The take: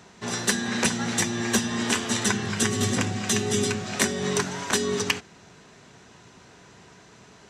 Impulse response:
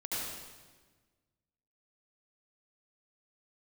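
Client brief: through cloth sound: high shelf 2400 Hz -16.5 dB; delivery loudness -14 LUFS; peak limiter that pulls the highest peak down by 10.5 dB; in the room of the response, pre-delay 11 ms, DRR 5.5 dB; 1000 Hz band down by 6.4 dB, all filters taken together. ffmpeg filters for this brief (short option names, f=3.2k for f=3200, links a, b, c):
-filter_complex "[0:a]equalizer=f=1k:t=o:g=-5,alimiter=limit=-17.5dB:level=0:latency=1,asplit=2[a][b];[1:a]atrim=start_sample=2205,adelay=11[c];[b][c]afir=irnorm=-1:irlink=0,volume=-9.5dB[d];[a][d]amix=inputs=2:normalize=0,highshelf=f=2.4k:g=-16.5,volume=16dB"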